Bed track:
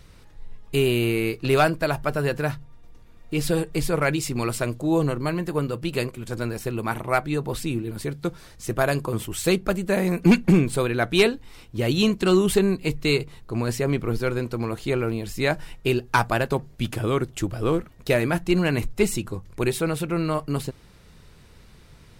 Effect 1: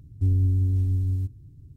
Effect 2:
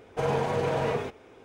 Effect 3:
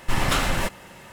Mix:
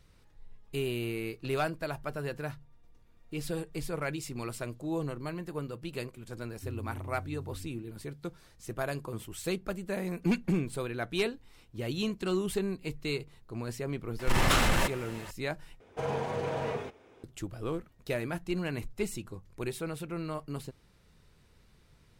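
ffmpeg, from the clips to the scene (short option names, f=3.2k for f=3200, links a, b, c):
-filter_complex "[0:a]volume=-12dB[a];[1:a]highpass=130[b];[3:a]asoftclip=type=tanh:threshold=-16.5dB[c];[a]asplit=2[d][e];[d]atrim=end=15.804[f];[2:a]atrim=end=1.44,asetpts=PTS-STARTPTS,volume=-6dB[g];[e]atrim=start=17.236[h];[b]atrim=end=1.76,asetpts=PTS-STARTPTS,volume=-13dB,afade=t=in:d=0.004:c=hsin,afade=t=out:st=1.756:d=0.004:c=hsin,adelay=6410[i];[c]atrim=end=1.12,asetpts=PTS-STARTPTS,volume=-0.5dB,afade=t=in:d=0.004:c=hsin,afade=t=out:st=1.116:d=0.004:c=hsin,adelay=14190[j];[f][g]acrossfade=d=0.004:c1=hsin:c2=hsin[k];[k][h]acrossfade=d=0.004:c1=hsin:c2=hsin[l];[l][i][j]amix=inputs=3:normalize=0"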